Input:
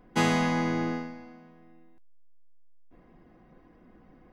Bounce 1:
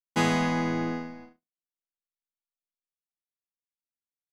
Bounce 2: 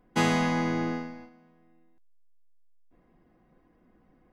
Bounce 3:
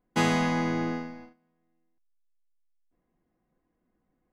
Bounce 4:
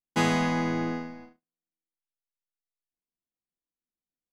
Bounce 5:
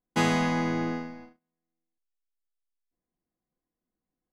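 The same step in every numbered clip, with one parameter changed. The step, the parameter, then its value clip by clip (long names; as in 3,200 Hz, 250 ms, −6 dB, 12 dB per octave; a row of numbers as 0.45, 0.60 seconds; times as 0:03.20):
noise gate, range: −60, −7, −20, −47, −33 decibels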